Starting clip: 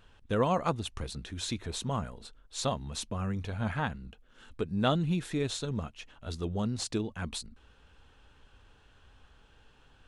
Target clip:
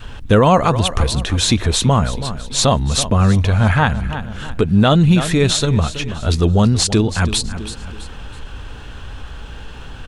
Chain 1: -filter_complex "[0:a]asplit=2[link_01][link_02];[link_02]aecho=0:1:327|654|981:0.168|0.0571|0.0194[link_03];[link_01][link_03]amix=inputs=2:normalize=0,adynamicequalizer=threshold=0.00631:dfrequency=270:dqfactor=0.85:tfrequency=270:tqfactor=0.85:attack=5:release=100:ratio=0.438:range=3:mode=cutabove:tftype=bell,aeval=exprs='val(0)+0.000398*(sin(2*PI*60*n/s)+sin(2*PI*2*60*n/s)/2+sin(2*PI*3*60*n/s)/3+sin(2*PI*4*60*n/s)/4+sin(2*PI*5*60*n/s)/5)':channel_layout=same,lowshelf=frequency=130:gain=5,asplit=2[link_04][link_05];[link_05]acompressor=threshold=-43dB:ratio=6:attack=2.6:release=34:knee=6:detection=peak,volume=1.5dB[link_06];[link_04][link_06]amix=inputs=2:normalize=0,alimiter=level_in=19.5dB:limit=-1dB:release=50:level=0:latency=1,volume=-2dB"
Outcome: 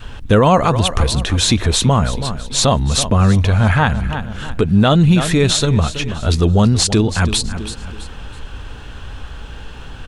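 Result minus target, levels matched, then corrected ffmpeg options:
downward compressor: peak gain reduction −6 dB
-filter_complex "[0:a]asplit=2[link_01][link_02];[link_02]aecho=0:1:327|654|981:0.168|0.0571|0.0194[link_03];[link_01][link_03]amix=inputs=2:normalize=0,adynamicequalizer=threshold=0.00631:dfrequency=270:dqfactor=0.85:tfrequency=270:tqfactor=0.85:attack=5:release=100:ratio=0.438:range=3:mode=cutabove:tftype=bell,aeval=exprs='val(0)+0.000398*(sin(2*PI*60*n/s)+sin(2*PI*2*60*n/s)/2+sin(2*PI*3*60*n/s)/3+sin(2*PI*4*60*n/s)/4+sin(2*PI*5*60*n/s)/5)':channel_layout=same,lowshelf=frequency=130:gain=5,asplit=2[link_04][link_05];[link_05]acompressor=threshold=-50dB:ratio=6:attack=2.6:release=34:knee=6:detection=peak,volume=1.5dB[link_06];[link_04][link_06]amix=inputs=2:normalize=0,alimiter=level_in=19.5dB:limit=-1dB:release=50:level=0:latency=1,volume=-2dB"

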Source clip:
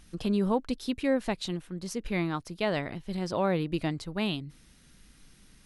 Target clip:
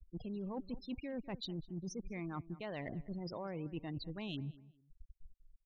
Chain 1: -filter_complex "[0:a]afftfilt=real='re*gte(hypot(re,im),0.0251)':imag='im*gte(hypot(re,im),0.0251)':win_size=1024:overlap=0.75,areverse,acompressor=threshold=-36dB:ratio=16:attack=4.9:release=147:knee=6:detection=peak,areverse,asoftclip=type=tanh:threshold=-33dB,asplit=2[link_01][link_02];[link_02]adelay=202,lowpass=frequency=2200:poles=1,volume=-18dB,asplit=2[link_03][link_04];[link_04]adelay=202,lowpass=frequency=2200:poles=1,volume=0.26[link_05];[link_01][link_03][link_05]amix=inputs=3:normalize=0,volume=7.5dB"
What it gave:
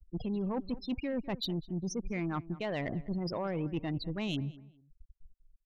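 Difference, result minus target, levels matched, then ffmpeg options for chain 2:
downward compressor: peak gain reduction −9.5 dB
-filter_complex "[0:a]afftfilt=real='re*gte(hypot(re,im),0.0251)':imag='im*gte(hypot(re,im),0.0251)':win_size=1024:overlap=0.75,areverse,acompressor=threshold=-46dB:ratio=16:attack=4.9:release=147:knee=6:detection=peak,areverse,asoftclip=type=tanh:threshold=-33dB,asplit=2[link_01][link_02];[link_02]adelay=202,lowpass=frequency=2200:poles=1,volume=-18dB,asplit=2[link_03][link_04];[link_04]adelay=202,lowpass=frequency=2200:poles=1,volume=0.26[link_05];[link_01][link_03][link_05]amix=inputs=3:normalize=0,volume=7.5dB"

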